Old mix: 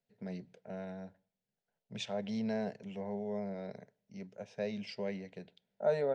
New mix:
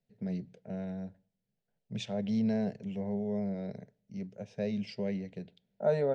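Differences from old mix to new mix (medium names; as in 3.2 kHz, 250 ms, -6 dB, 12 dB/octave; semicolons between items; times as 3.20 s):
first voice: add peaking EQ 1.1 kHz -5.5 dB 1.1 oct; master: add bass shelf 280 Hz +11 dB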